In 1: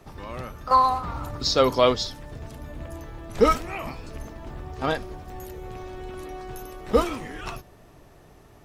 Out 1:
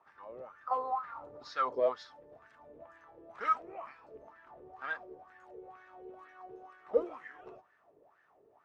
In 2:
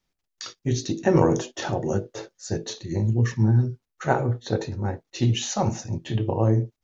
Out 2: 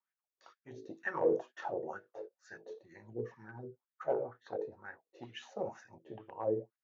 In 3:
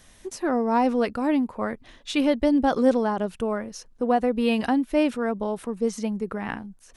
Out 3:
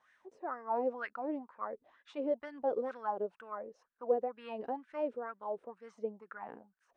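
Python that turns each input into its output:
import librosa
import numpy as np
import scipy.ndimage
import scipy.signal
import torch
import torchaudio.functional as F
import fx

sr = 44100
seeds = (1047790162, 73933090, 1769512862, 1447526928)

y = scipy.signal.sosfilt(scipy.signal.cheby1(8, 1.0, 9800.0, 'lowpass', fs=sr, output='sos'), x)
y = np.clip(10.0 ** (12.5 / 20.0) * y, -1.0, 1.0) / 10.0 ** (12.5 / 20.0)
y = fx.wah_lfo(y, sr, hz=2.1, low_hz=430.0, high_hz=1700.0, q=5.3)
y = F.gain(torch.from_numpy(y), -1.0).numpy()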